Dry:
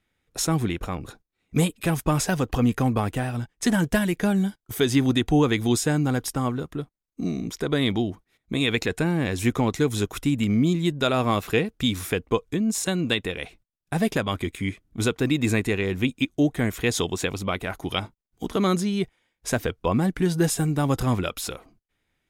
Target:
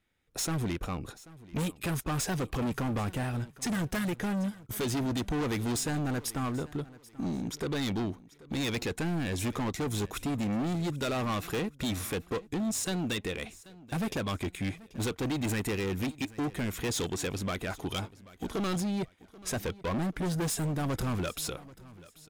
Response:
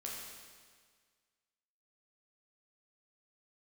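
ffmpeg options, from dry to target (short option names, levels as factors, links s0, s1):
-filter_complex "[0:a]asettb=1/sr,asplit=3[s0][s1][s2];[s0]atrim=end=15.494[s3];[s1]atrim=start=15.49:end=16.17,asetpts=PTS-STARTPTS,afade=t=in:d=0.004:c=qsin,afade=t=out:st=0.676:d=0.004:c=qsin,highshelf=f=11000:g=11[s4];[s2]atrim=start=16.166[s5];[s3][s4]acrossfade=d=0.004:c1=hsin:c2=qsin[s6];[s6][s5]acrossfade=d=0.004:c1=qsin:c2=hsin,asoftclip=type=hard:threshold=0.0531,asplit=2[s7][s8];[s8]aecho=0:1:785|1570:0.1|0.031[s9];[s7][s9]amix=inputs=2:normalize=0,volume=0.708"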